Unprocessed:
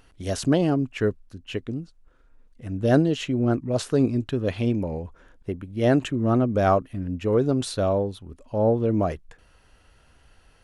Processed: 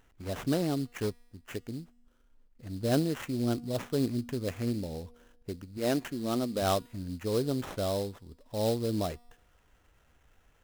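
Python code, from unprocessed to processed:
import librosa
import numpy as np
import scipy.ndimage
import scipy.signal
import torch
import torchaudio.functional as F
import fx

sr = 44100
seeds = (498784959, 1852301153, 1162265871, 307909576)

y = fx.median_filter(x, sr, points=41, at=(1.02, 1.45))
y = fx.ellip_bandstop(y, sr, low_hz=840.0, high_hz=1700.0, order=3, stop_db=40, at=(4.54, 4.95))
y = fx.peak_eq(y, sr, hz=95.0, db=-13.5, octaves=0.87, at=(5.77, 6.62))
y = fx.sample_hold(y, sr, seeds[0], rate_hz=4600.0, jitter_pct=20)
y = fx.comb_fb(y, sr, f0_hz=240.0, decay_s=1.2, harmonics='all', damping=0.0, mix_pct=40)
y = y * 10.0 ** (-4.0 / 20.0)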